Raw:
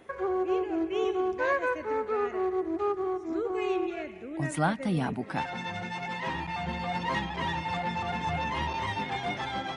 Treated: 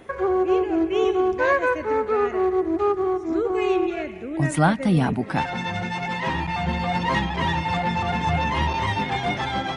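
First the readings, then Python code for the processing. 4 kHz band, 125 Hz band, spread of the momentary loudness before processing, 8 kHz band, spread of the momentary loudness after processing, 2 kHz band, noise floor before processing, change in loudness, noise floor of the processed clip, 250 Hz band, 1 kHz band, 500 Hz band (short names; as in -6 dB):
+7.0 dB, +10.0 dB, 5 LU, +7.0 dB, 6 LU, +7.0 dB, -41 dBFS, +8.0 dB, -33 dBFS, +8.5 dB, +7.0 dB, +7.5 dB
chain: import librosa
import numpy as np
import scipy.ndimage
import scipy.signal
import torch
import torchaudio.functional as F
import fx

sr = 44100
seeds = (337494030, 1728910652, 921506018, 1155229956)

y = fx.low_shelf(x, sr, hz=150.0, db=6.0)
y = y * 10.0 ** (7.0 / 20.0)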